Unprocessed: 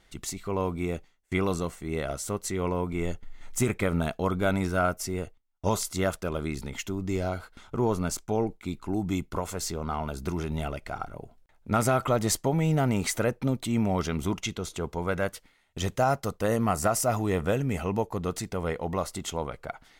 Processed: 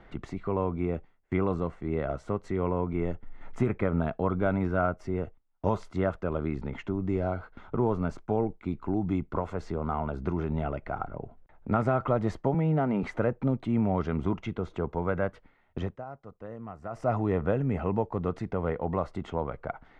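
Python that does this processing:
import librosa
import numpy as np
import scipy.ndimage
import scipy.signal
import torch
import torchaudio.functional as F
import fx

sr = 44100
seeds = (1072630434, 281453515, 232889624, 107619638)

y = fx.ellip_bandpass(x, sr, low_hz=160.0, high_hz=5100.0, order=3, stop_db=40, at=(12.54, 13.03))
y = fx.edit(y, sr, fx.fade_down_up(start_s=15.78, length_s=1.32, db=-22.0, fade_s=0.28, curve='qua'), tone=tone)
y = scipy.signal.sosfilt(scipy.signal.butter(2, 1500.0, 'lowpass', fs=sr, output='sos'), y)
y = fx.band_squash(y, sr, depth_pct=40)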